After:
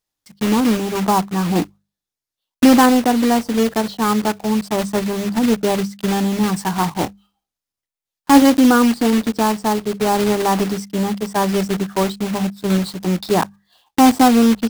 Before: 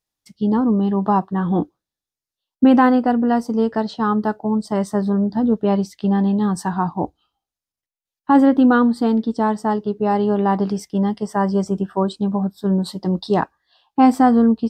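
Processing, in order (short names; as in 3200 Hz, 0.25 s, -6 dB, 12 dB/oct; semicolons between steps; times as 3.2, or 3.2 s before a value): block floating point 3-bit; notches 50/100/150/200 Hz; 7.03–8.42 doubler 25 ms -10 dB; gain +1.5 dB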